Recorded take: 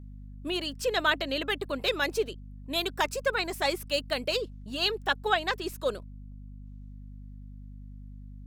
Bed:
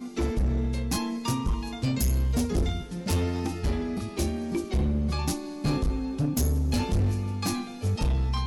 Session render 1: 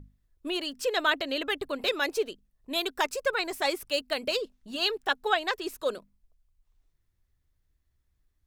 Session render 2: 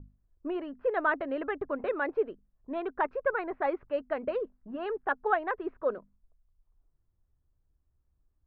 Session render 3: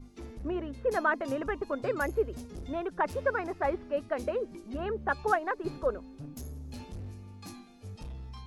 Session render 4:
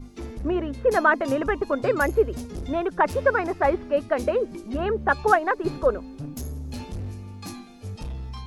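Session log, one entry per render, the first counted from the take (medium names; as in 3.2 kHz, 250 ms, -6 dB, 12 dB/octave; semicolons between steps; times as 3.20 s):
hum notches 50/100/150/200/250 Hz
low-pass 1.6 kHz 24 dB/octave; level-controlled noise filter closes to 1.2 kHz, open at -24 dBFS
add bed -17 dB
trim +8.5 dB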